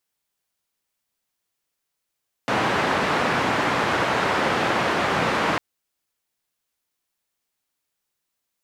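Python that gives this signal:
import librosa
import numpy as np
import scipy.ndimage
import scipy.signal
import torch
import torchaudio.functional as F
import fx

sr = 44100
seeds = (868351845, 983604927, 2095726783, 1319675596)

y = fx.band_noise(sr, seeds[0], length_s=3.1, low_hz=120.0, high_hz=1500.0, level_db=-22.0)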